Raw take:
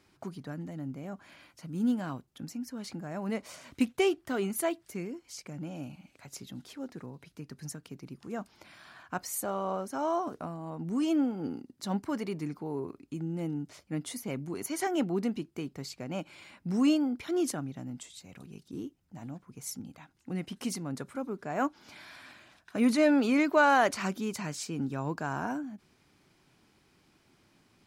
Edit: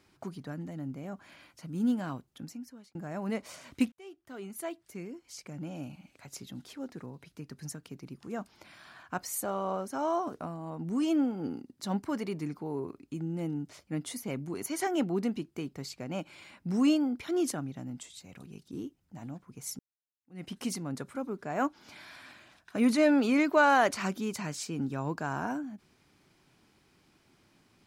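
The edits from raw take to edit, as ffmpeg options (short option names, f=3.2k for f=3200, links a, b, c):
-filter_complex "[0:a]asplit=4[a][b][c][d];[a]atrim=end=2.95,asetpts=PTS-STARTPTS,afade=t=out:st=2.32:d=0.63[e];[b]atrim=start=2.95:end=3.92,asetpts=PTS-STARTPTS,afade=t=in:d=0.004:c=hsin,afade=t=out:st=0.966:d=0.004:c=hsin[f];[c]atrim=start=3.92:end=19.79,asetpts=PTS-STARTPTS,afade=t=in:d=1.77,afade=t=out:st=15.866:d=0.004:c=hsin[g];[d]atrim=start=19.79,asetpts=PTS-STARTPTS,afade=t=in:d=0.65:c=exp[h];[e][f][g][h]concat=n=4:v=0:a=1"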